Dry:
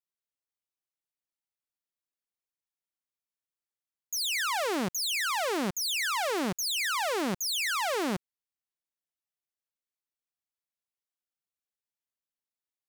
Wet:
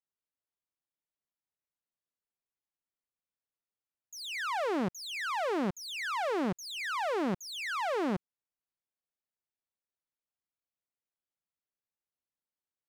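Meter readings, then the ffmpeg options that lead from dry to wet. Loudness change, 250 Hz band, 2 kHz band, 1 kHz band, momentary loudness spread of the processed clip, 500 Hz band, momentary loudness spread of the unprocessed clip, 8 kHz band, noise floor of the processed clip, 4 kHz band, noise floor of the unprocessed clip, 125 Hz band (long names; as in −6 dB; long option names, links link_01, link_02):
−4.5 dB, 0.0 dB, −5.0 dB, −2.0 dB, 5 LU, −0.5 dB, 3 LU, −14.0 dB, below −85 dBFS, −9.5 dB, below −85 dBFS, 0.0 dB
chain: -af "lowpass=frequency=1300:poles=1"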